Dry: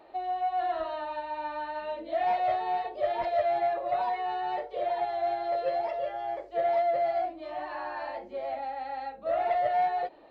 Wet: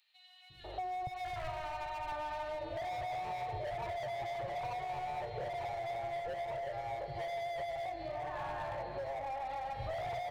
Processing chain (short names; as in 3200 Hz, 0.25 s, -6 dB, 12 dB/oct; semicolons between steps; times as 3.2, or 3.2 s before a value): three bands offset in time highs, lows, mids 0.5/0.64 s, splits 210/2900 Hz; hard clip -34.5 dBFS, distortion -6 dB; bell 430 Hz +11.5 dB 1.7 oct, from 1.07 s -6 dB, from 2.12 s +4.5 dB; tape echo 0.262 s, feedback 88%, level -11 dB, low-pass 3800 Hz; compressor, threshold -38 dBFS, peak gain reduction 10 dB; resonant low shelf 180 Hz +12.5 dB, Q 3; gain +1.5 dB